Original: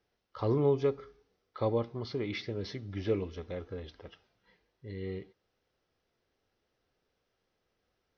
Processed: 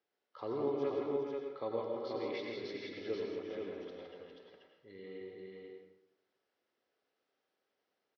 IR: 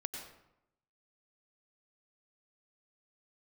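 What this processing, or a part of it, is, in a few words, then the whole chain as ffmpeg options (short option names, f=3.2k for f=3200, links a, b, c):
supermarket ceiling speaker: -filter_complex "[0:a]highpass=290,lowpass=5.4k[a];[1:a]atrim=start_sample=2205[b];[a][b]afir=irnorm=-1:irlink=0,aecho=1:1:163|405|484:0.501|0.335|0.668,volume=-5.5dB"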